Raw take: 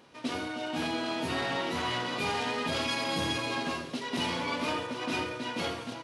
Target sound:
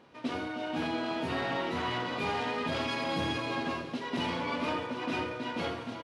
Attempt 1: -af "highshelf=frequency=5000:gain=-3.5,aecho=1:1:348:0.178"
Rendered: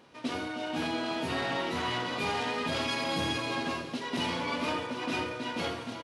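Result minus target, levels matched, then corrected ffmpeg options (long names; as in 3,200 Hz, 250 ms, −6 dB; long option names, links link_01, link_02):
8,000 Hz band +6.0 dB
-af "highshelf=frequency=5000:gain=-14.5,aecho=1:1:348:0.178"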